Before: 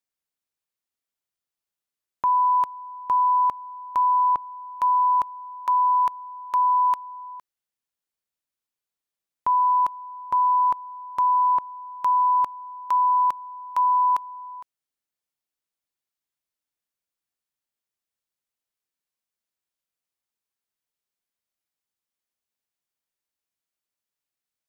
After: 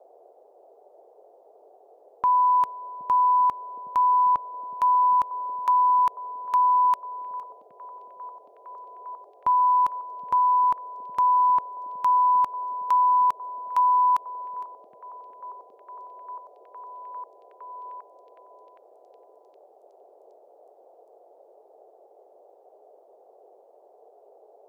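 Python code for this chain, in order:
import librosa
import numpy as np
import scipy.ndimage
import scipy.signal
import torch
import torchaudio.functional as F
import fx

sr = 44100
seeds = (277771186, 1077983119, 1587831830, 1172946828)

y = fx.echo_stepped(x, sr, ms=768, hz=190.0, octaves=0.7, feedback_pct=70, wet_db=-6)
y = fx.dmg_noise_band(y, sr, seeds[0], low_hz=390.0, high_hz=770.0, level_db=-54.0)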